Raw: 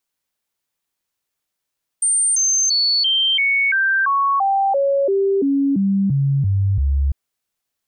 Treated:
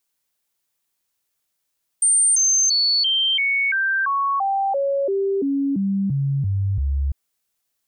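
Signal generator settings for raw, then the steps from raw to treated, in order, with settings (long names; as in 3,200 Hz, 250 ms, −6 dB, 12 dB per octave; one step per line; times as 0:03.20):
stepped sweep 8,880 Hz down, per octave 2, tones 15, 0.34 s, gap 0.00 s −14 dBFS
brickwall limiter −18 dBFS
high-shelf EQ 5,000 Hz +6 dB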